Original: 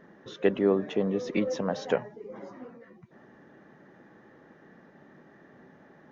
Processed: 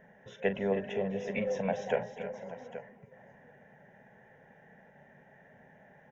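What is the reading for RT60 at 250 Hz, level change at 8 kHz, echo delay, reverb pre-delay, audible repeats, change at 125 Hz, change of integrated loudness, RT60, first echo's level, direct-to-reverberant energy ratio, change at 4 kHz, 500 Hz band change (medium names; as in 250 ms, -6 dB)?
no reverb, no reading, 41 ms, no reverb, 5, -4.0 dB, -6.0 dB, no reverb, -13.0 dB, no reverb, -6.5 dB, -4.5 dB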